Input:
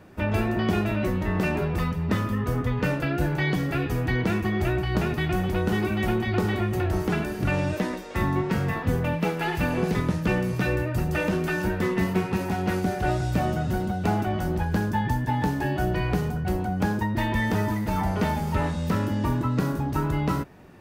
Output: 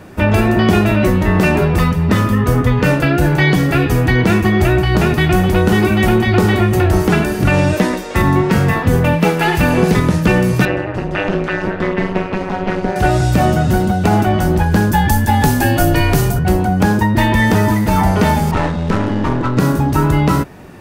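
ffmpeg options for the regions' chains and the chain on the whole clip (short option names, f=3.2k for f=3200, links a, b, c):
-filter_complex "[0:a]asettb=1/sr,asplit=3[a][b][c];[a]atrim=end=10.654[d];[b]atrim=start=10.65:end=12.96,asetpts=PTS-STARTPTS,afade=t=in:d=0.004:c=qsin,afade=t=out:st=2.306:d=0.004:c=qsin,highpass=160,lowpass=3.4k,tremolo=f=200:d=0.974[e];[c]atrim=start=12.956[f];[d][e]acrossfade=d=0.004:c1=hsin:c2=qsin[g];[g][f]acrossfade=d=0.004:c1=qsin:c2=hsin,asettb=1/sr,asplit=3[h][i][j];[h]atrim=end=14.924[k];[i]atrim=start=14.92:end=16.39,asetpts=PTS-STARTPTS,afade=t=in:d=0.004:c=qsin,afade=t=out:st=1.466:d=0.004:c=qsin,highshelf=f=5.4k:g=12,afreqshift=-30[l];[j]atrim=start=16.386[m];[k][l]acrossfade=d=0.004:c1=hsin:c2=qsin[n];[n][m]acrossfade=d=0.004:c1=qsin:c2=hsin,asettb=1/sr,asplit=3[o][p][q];[o]atrim=end=18.514[r];[p]atrim=start=18.51:end=19.57,asetpts=PTS-STARTPTS,afade=t=in:d=0.004:c=qsin,afade=t=out:st=1.056:d=0.004:c=qsin,highpass=f=88:p=1,aeval=exprs='clip(val(0),-1,0.0266)':c=same,adynamicsmooth=sensitivity=5.5:basefreq=2.3k[s];[q]atrim=start=19.566[t];[r][s]acrossfade=d=0.004:c1=hsin:c2=qsin[u];[u][t]acrossfade=d=0.004:c1=qsin:c2=hsin,equalizer=f=9.1k:w=0.9:g=3.5,alimiter=level_in=13.5dB:limit=-1dB:release=50:level=0:latency=1,volume=-1dB"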